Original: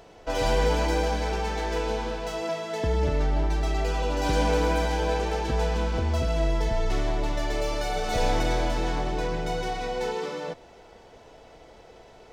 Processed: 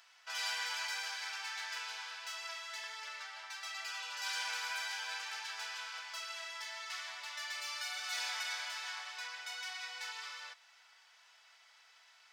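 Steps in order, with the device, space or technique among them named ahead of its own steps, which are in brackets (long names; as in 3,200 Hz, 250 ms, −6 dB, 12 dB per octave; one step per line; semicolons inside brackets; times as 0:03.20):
0:00.71–0:02.38: high-pass filter 310 Hz 24 dB per octave
headphones lying on a table (high-pass filter 1,300 Hz 24 dB per octave; parametric band 4,900 Hz +4.5 dB 0.2 octaves)
level −4 dB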